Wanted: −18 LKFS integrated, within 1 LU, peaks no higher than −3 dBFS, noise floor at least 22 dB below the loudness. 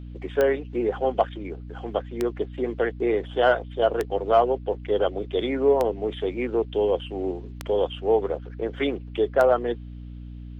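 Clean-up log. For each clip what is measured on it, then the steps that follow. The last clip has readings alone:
number of clicks 6; mains hum 60 Hz; hum harmonics up to 300 Hz; level of the hum −35 dBFS; integrated loudness −25.0 LKFS; sample peak −7.5 dBFS; target loudness −18.0 LKFS
→ click removal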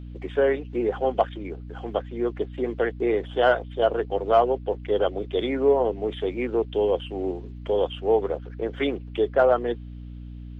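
number of clicks 0; mains hum 60 Hz; hum harmonics up to 300 Hz; level of the hum −35 dBFS
→ mains-hum notches 60/120/180/240/300 Hz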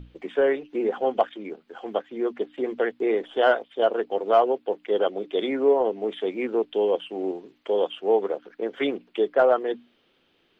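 mains hum none found; integrated loudness −25.0 LKFS; sample peak −8.0 dBFS; target loudness −18.0 LKFS
→ level +7 dB
brickwall limiter −3 dBFS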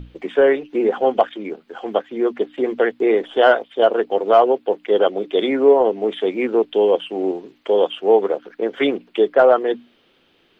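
integrated loudness −18.0 LKFS; sample peak −3.0 dBFS; background noise floor −59 dBFS

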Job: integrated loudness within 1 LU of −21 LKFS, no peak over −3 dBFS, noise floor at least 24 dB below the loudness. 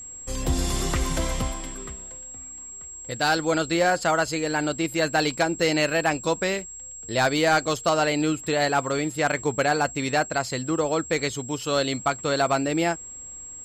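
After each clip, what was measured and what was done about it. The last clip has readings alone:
share of clipped samples 0.2%; peaks flattened at −13.5 dBFS; interfering tone 7,600 Hz; level of the tone −37 dBFS; integrated loudness −24.5 LKFS; sample peak −13.5 dBFS; target loudness −21.0 LKFS
→ clipped peaks rebuilt −13.5 dBFS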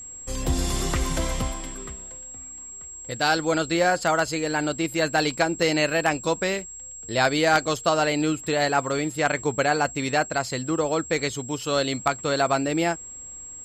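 share of clipped samples 0.0%; interfering tone 7,600 Hz; level of the tone −37 dBFS
→ notch filter 7,600 Hz, Q 30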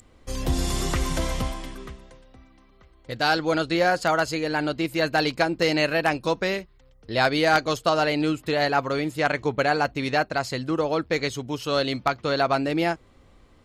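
interfering tone none found; integrated loudness −24.0 LKFS; sample peak −4.5 dBFS; target loudness −21.0 LKFS
→ level +3 dB
brickwall limiter −3 dBFS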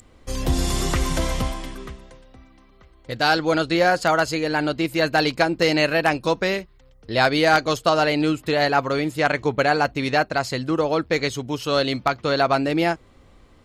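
integrated loudness −21.0 LKFS; sample peak −3.0 dBFS; background noise floor −52 dBFS

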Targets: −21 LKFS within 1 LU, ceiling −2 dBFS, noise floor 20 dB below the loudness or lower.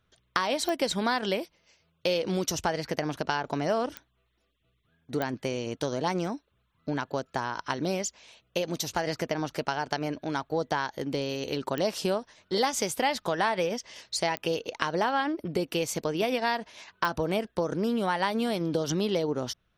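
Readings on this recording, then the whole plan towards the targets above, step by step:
number of clicks 6; integrated loudness −30.0 LKFS; sample peak −8.0 dBFS; target loudness −21.0 LKFS
→ click removal
level +9 dB
brickwall limiter −2 dBFS

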